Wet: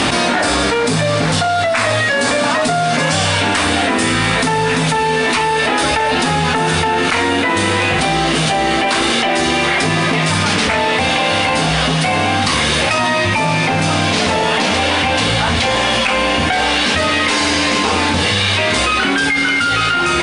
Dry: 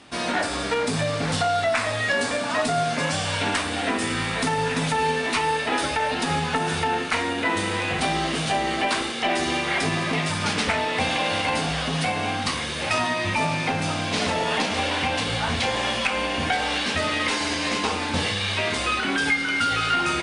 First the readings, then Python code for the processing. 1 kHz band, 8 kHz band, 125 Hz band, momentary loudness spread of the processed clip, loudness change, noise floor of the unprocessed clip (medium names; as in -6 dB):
+9.0 dB, +10.0 dB, +10.0 dB, 1 LU, +9.5 dB, -28 dBFS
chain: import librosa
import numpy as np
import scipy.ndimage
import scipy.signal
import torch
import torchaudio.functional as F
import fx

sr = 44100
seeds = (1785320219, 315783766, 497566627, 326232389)

y = fx.env_flatten(x, sr, amount_pct=100)
y = y * librosa.db_to_amplitude(3.5)